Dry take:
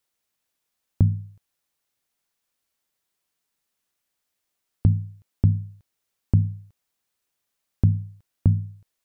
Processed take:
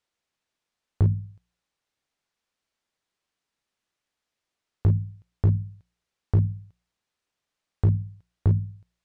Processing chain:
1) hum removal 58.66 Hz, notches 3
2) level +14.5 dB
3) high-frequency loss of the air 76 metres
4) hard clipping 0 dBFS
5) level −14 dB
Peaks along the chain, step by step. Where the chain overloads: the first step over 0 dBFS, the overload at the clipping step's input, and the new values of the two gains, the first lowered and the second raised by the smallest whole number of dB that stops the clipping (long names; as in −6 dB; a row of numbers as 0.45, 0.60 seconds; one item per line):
−6.5, +8.0, +8.0, 0.0, −14.0 dBFS
step 2, 8.0 dB
step 2 +6.5 dB, step 5 −6 dB